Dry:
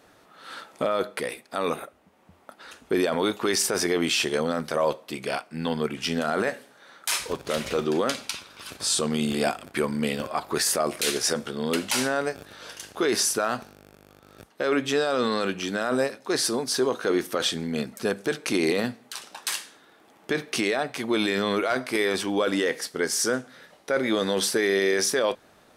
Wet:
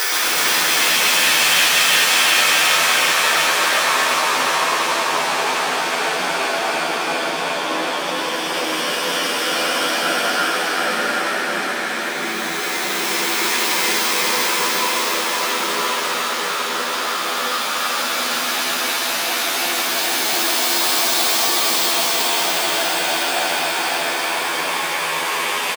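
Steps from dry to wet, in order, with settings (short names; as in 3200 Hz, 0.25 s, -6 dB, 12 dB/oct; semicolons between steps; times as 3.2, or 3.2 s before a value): tracing distortion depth 0.12 ms; HPF 780 Hz 24 dB/oct; Paulstretch 4.1×, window 1.00 s, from 3.77; echoes that change speed 0.121 s, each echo -6 st, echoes 3; doubler 12 ms -3 dB; on a send: thin delay 0.36 s, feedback 76%, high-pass 1600 Hz, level -4 dB; on the sum: gain +7.5 dB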